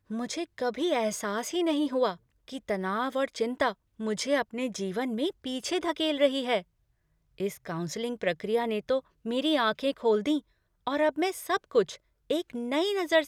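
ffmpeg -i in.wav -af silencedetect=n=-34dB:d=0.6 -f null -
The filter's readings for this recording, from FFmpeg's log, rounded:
silence_start: 6.60
silence_end: 7.40 | silence_duration: 0.80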